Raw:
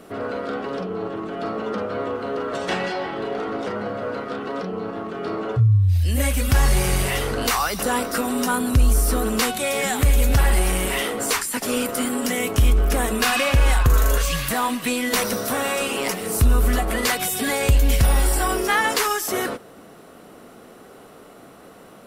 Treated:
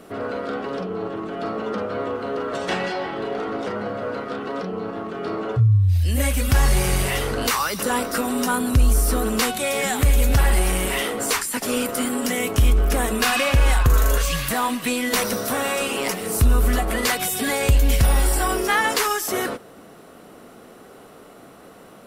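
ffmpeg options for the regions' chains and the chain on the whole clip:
-filter_complex "[0:a]asettb=1/sr,asplit=3[a][b][c];[a]atrim=end=7.484[d];[b]atrim=start=7.48:end=7.9,asetpts=PTS-STARTPTS,afade=t=in:d=0.004:c=qsin,afade=t=out:st=0.416:d=0.004:c=qsin,highpass=84,bandreject=f=730:w=5.1[e];[c]atrim=start=7.896[f];[d][e]acrossfade=d=0.004:c1=hsin:c2=qsin[g];[g][f]acrossfade=d=0.004:c1=qsin:c2=hsin"

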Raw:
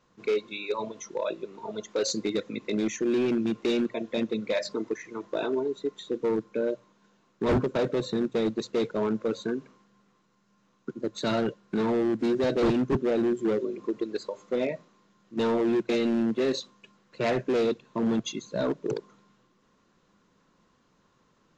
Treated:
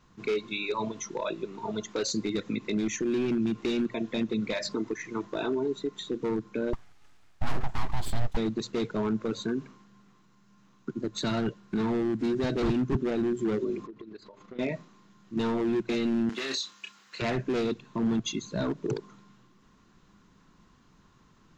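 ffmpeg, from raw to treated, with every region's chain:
-filter_complex "[0:a]asettb=1/sr,asplit=3[a][b][c];[a]atrim=end=6.734[d];[b]atrim=start=6.73:end=8.37,asetpts=PTS-STARTPTS,afade=t=in:d=0.004:c=qsin,afade=t=out:st=1.636:d=0.004:c=qsin,highpass=f=250:p=1,aeval=exprs='abs(val(0))':c=same[e];[c]atrim=start=8.366[f];[d][e]acrossfade=d=0.004:c1=hsin:c2=qsin[g];[g][f]acrossfade=d=0.004:c1=qsin:c2=hsin,asettb=1/sr,asplit=3[h][i][j];[h]atrim=end=13.864[k];[i]atrim=start=13.86:end=14.59,asetpts=PTS-STARTPTS,afade=t=in:d=0.004:c=qsin,afade=t=out:st=0.726:d=0.004:c=qsin,lowpass=3.8k,acompressor=threshold=-43dB:ratio=5:attack=3.2:release=140:knee=1:detection=peak,tremolo=f=27:d=0.462[l];[j]atrim=start=14.586[m];[k][l]acrossfade=d=0.004:c1=hsin:c2=qsin[n];[n][m]acrossfade=d=0.004:c1=qsin:c2=hsin,asettb=1/sr,asplit=3[o][p][q];[o]atrim=end=16.294[r];[p]atrim=start=16.29:end=17.22,asetpts=PTS-STARTPTS,afade=t=in:d=0.004:c=qsin,afade=t=out:st=0.926:d=0.004:c=qsin,highpass=f=270:p=1,tiltshelf=f=780:g=-9.5,asplit=2[s][t];[t]adelay=30,volume=-7dB[u];[s][u]amix=inputs=2:normalize=0,atrim=end_sample=41013[v];[q]atrim=start=17.216[w];[r][v]acrossfade=d=0.004:c1=hsin:c2=qsin[x];[x][w]acrossfade=d=0.004:c1=qsin:c2=hsin,equalizer=f=530:w=2.9:g=-9,alimiter=level_in=2.5dB:limit=-24dB:level=0:latency=1:release=80,volume=-2.5dB,lowshelf=f=120:g=10.5,volume=4dB"

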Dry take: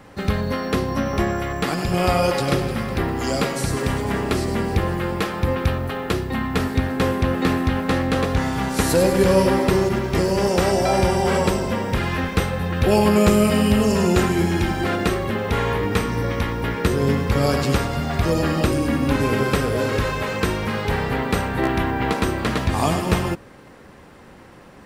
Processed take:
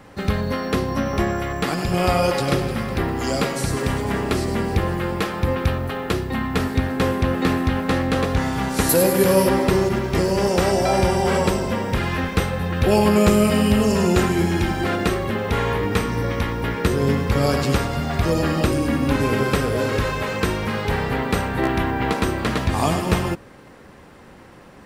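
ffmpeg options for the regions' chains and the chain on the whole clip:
-filter_complex "[0:a]asettb=1/sr,asplit=3[a][b][c];[a]atrim=end=8.894[d];[b]atrim=start=8.89:end=9.49,asetpts=PTS-STARTPTS,afade=t=in:d=0.004:c=qsin,afade=t=out:st=0.596:d=0.004:c=qsin,highpass=120,equalizer=f=12k:w=1.8:g=14.5[e];[c]atrim=start=9.486[f];[d][e]acrossfade=d=0.004:c1=hsin:c2=qsin[g];[g][f]acrossfade=d=0.004:c1=qsin:c2=hsin"

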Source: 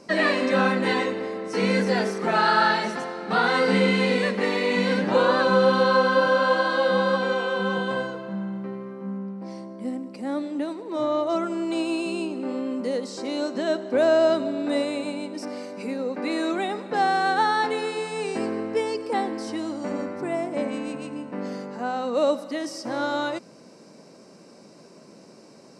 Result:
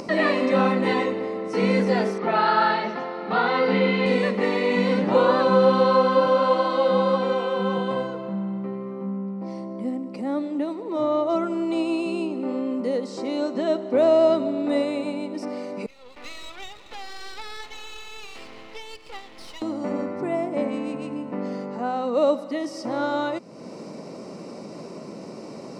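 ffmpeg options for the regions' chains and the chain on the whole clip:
-filter_complex "[0:a]asettb=1/sr,asplit=3[a][b][c];[a]atrim=end=2.184[d];[b]atrim=start=2.18:end=4.06,asetpts=PTS-STARTPTS,afade=t=in:d=0.004:c=qsin,afade=t=out:st=1.876:d=0.004:c=qsin,lowpass=f=4.7k:w=0.5412,lowpass=f=4.7k:w=1.3066,lowshelf=f=230:g=-6[e];[c]atrim=start=4.056[f];[d][e]acrossfade=d=0.004:c1=hsin:c2=qsin[g];[g][f]acrossfade=d=0.004:c1=qsin:c2=hsin,asettb=1/sr,asplit=3[h][i][j];[h]atrim=end=15.864[k];[i]atrim=start=15.86:end=19.62,asetpts=PTS-STARTPTS,afade=t=in:d=0.004:c=qsin,afade=t=out:st=3.756:d=0.004:c=qsin,aphaser=in_gain=1:out_gain=1:delay=4.3:decay=0.26:speed=1.3:type=triangular,bandpass=f=3.4k:t=q:w=2.5,aeval=exprs='max(val(0),0)':c=same[l];[j]atrim=start=19.616[m];[k][l]acrossfade=d=0.004:c1=hsin:c2=qsin[n];[n][m]acrossfade=d=0.004:c1=qsin:c2=hsin,highshelf=f=3.6k:g=-10,bandreject=f=1.6k:w=6.3,acompressor=mode=upward:threshold=-29dB:ratio=2.5,volume=2dB"

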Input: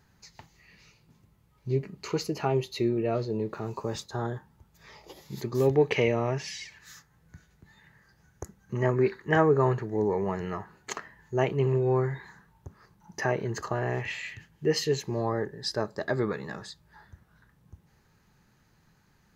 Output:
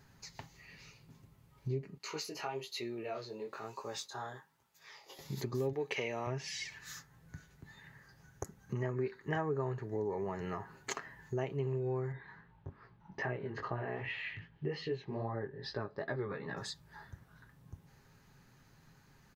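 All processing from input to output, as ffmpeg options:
-filter_complex "[0:a]asettb=1/sr,asplit=3[a][b][c];[a]atrim=end=1.984[d];[b]atrim=start=1.98:end=5.19,asetpts=PTS-STARTPTS,afade=t=in:d=0.004:c=qsin,afade=t=out:st=3.206:d=0.004:c=qsin,highpass=f=1.2k:p=1,flanger=delay=16.5:depth=7.6:speed=1.1[e];[c]atrim=start=5.186[f];[d][e]acrossfade=d=0.004:c1=hsin:c2=qsin[g];[g][f]acrossfade=d=0.004:c1=qsin:c2=hsin,asettb=1/sr,asplit=3[h][i][j];[h]atrim=end=5.734[k];[i]atrim=start=5.73:end=6.27,asetpts=PTS-STARTPTS,afade=t=in:d=0.004:c=qsin,afade=t=out:st=0.536:d=0.004:c=qsin,highpass=f=430:p=1,highshelf=f=4.8k:g=6.5[l];[j]atrim=start=6.266[m];[k][l]acrossfade=d=0.004:c1=hsin:c2=qsin[n];[n][m]acrossfade=d=0.004:c1=qsin:c2=hsin,asettb=1/sr,asplit=3[o][p][q];[o]atrim=end=12.124[r];[p]atrim=start=12.12:end=16.57,asetpts=PTS-STARTPTS,afade=t=in:d=0.004:c=qsin,afade=t=out:st=4.446:d=0.004:c=qsin,lowpass=f=3.6k:w=0.5412,lowpass=f=3.6k:w=1.3066,flanger=delay=16.5:depth=4.5:speed=2.5[s];[q]atrim=start=16.566[t];[r][s]acrossfade=d=0.004:c1=hsin:c2=qsin[u];[u][t]acrossfade=d=0.004:c1=qsin:c2=hsin,aecho=1:1:7.4:0.33,acompressor=threshold=-38dB:ratio=3,volume=1dB"

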